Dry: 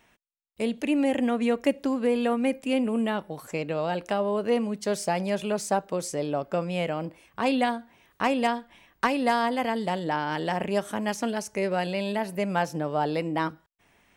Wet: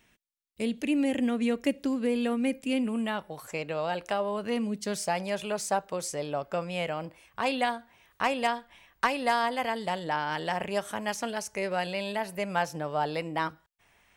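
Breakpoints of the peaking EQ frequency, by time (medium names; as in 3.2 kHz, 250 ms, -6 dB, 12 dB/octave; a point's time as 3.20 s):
peaking EQ -8.5 dB 1.8 oct
2.71 s 830 Hz
3.28 s 240 Hz
4.23 s 240 Hz
4.77 s 1.1 kHz
5.10 s 260 Hz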